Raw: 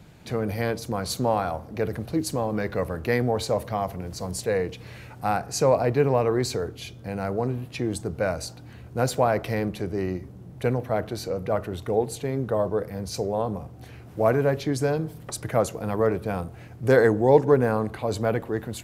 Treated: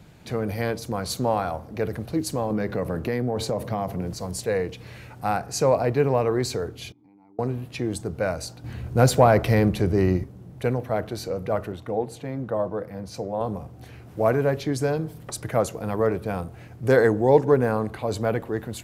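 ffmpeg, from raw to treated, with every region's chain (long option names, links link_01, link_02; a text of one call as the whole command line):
ffmpeg -i in.wav -filter_complex "[0:a]asettb=1/sr,asplit=3[link_01][link_02][link_03];[link_01]atrim=end=2.504[link_04];[link_02]atrim=start=2.5:end=4.14,asetpts=PTS-STARTPTS,afade=type=in:duration=0.004:curve=qsin,afade=type=out:start_time=1.636:duration=0.004:curve=qsin,highpass=120,lowshelf=frequency=470:gain=8.5,acompressor=threshold=-21dB:ratio=6:attack=3.2:release=140:knee=1:detection=peak[link_05];[link_03]atrim=start=4.136[link_06];[link_04][link_05]acrossfade=duration=0.004:curve1=hsin:curve2=qsin[link_07];[link_07][link_06]acrossfade=duration=0.004:curve1=qsin:curve2=hsin,asettb=1/sr,asplit=3[link_08][link_09][link_10];[link_08]atrim=end=6.924[link_11];[link_09]atrim=start=6.92:end=7.39,asetpts=PTS-STARTPTS,afade=type=in:duration=0.004:curve=qsin,afade=type=out:start_time=0.466:duration=0.004:curve=qsin,asplit=3[link_12][link_13][link_14];[link_12]bandpass=frequency=300:width_type=q:width=8,volume=0dB[link_15];[link_13]bandpass=frequency=870:width_type=q:width=8,volume=-6dB[link_16];[link_14]bandpass=frequency=2240:width_type=q:width=8,volume=-9dB[link_17];[link_15][link_16][link_17]amix=inputs=3:normalize=0,equalizer=frequency=2700:width=3.5:gain=-13.5,acompressor=threshold=-53dB:ratio=4:attack=3.2:release=140:knee=1:detection=peak[link_18];[link_10]atrim=start=7.386[link_19];[link_11][link_18]acrossfade=duration=0.004:curve1=hsin:curve2=qsin[link_20];[link_20][link_19]acrossfade=duration=0.004:curve1=qsin:curve2=hsin,asettb=1/sr,asplit=3[link_21][link_22][link_23];[link_21]atrim=end=8.644[link_24];[link_22]atrim=start=8.64:end=10.24,asetpts=PTS-STARTPTS,afade=type=in:duration=0.004:curve=qsin,afade=type=out:start_time=1.596:duration=0.004:curve=qsin,lowshelf=frequency=130:gain=8,acontrast=34[link_25];[link_23]atrim=start=10.236[link_26];[link_24][link_25]acrossfade=duration=0.004:curve1=hsin:curve2=qsin[link_27];[link_27][link_26]acrossfade=duration=0.004:curve1=qsin:curve2=hsin,asettb=1/sr,asplit=3[link_28][link_29][link_30];[link_28]atrim=end=11.724[link_31];[link_29]atrim=start=11.72:end=13.41,asetpts=PTS-STARTPTS,afade=type=in:duration=0.004:curve=qsin,afade=type=out:start_time=1.686:duration=0.004:curve=qsin,highpass=frequency=140:poles=1,highshelf=frequency=3200:gain=-10,bandreject=frequency=410:width=5.9[link_32];[link_30]atrim=start=13.406[link_33];[link_31][link_32]acrossfade=duration=0.004:curve1=hsin:curve2=qsin[link_34];[link_34][link_33]acrossfade=duration=0.004:curve1=qsin:curve2=hsin" out.wav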